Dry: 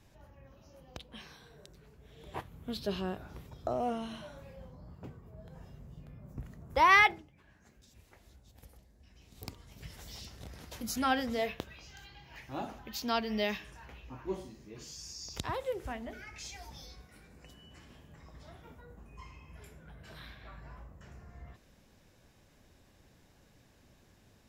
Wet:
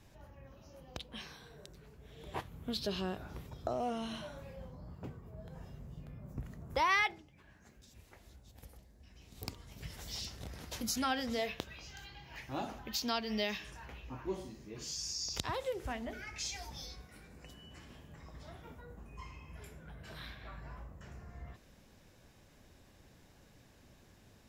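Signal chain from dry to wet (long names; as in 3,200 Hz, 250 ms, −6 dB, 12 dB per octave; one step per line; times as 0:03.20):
dynamic equaliser 5,100 Hz, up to +6 dB, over −54 dBFS, Q 0.7
downward compressor 2 to 1, threshold −37 dBFS, peak gain reduction 11.5 dB
level +1.5 dB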